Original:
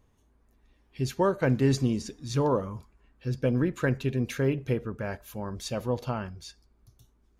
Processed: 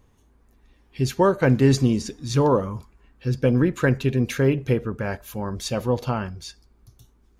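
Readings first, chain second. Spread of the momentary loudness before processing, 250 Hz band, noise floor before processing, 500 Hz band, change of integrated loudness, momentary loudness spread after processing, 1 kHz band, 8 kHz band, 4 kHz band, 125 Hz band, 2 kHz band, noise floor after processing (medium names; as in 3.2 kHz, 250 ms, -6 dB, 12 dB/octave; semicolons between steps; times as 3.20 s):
13 LU, +6.5 dB, -66 dBFS, +6.5 dB, +6.5 dB, 13 LU, +6.5 dB, +6.5 dB, +6.5 dB, +6.5 dB, +6.5 dB, -59 dBFS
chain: band-stop 630 Hz, Q 17; trim +6.5 dB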